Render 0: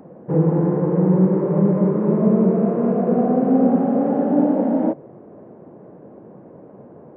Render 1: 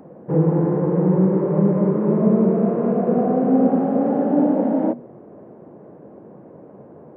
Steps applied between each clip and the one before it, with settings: notches 60/120/180/240 Hz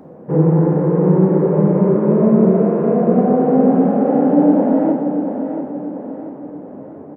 feedback echo 0.686 s, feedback 46%, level -8 dB; on a send at -3.5 dB: reverb RT60 1.3 s, pre-delay 5 ms; on the sum: gain +2 dB

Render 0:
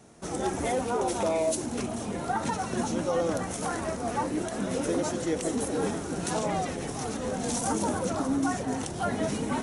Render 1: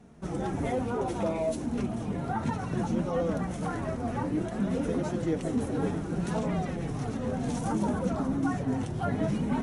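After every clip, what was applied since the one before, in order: tone controls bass +10 dB, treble -10 dB; flange 0.62 Hz, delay 4 ms, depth 4.3 ms, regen -38%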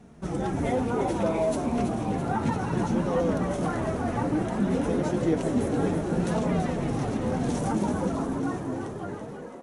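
ending faded out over 2.18 s; frequency-shifting echo 0.331 s, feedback 62%, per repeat +67 Hz, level -8 dB; gain +3 dB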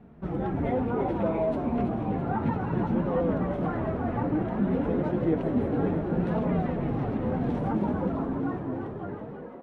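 air absorption 460 m

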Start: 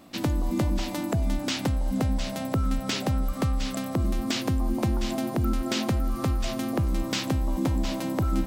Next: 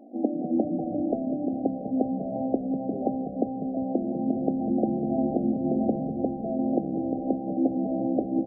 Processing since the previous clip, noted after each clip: FFT band-pass 210–810 Hz; frequency-shifting echo 0.197 s, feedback 30%, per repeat -68 Hz, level -10 dB; gain +4 dB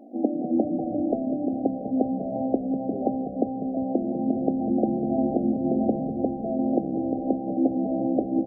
dynamic EQ 170 Hz, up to -5 dB, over -46 dBFS, Q 4.8; gain +2 dB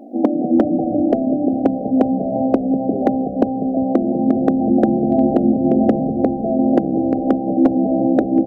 overloaded stage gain 14 dB; gain +9 dB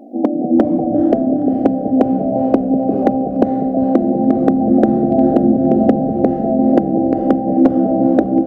AGC gain up to 5 dB; diffused feedback echo 0.471 s, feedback 51%, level -12 dB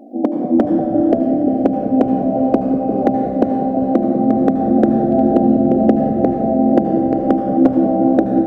reverb RT60 2.1 s, pre-delay 70 ms, DRR 6.5 dB; gain -1.5 dB

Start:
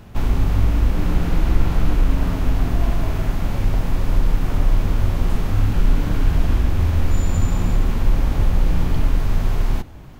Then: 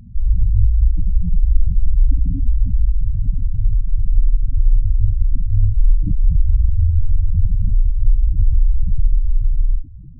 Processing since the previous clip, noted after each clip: spectral gate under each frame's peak -10 dB strong; gain +3.5 dB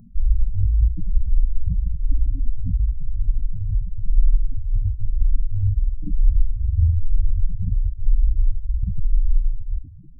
photocell phaser 1 Hz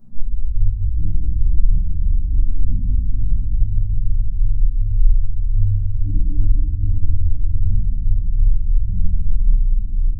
compressor 3:1, threshold -20 dBFS, peak gain reduction 9.5 dB; reverse echo 42 ms -11 dB; reverb RT60 3.6 s, pre-delay 3 ms, DRR -15 dB; gain -11 dB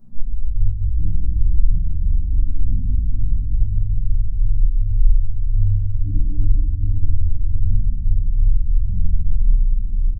echo 92 ms -12.5 dB; gain -1 dB

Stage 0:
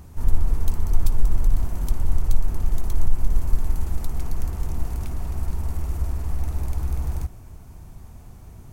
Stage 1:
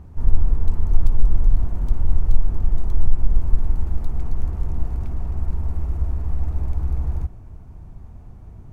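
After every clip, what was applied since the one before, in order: LPF 1200 Hz 6 dB/oct; low shelf 160 Hz +3 dB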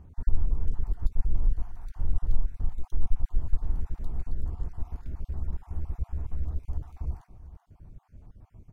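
random spectral dropouts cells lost 38%; echo 0.385 s -15 dB; gain -8 dB

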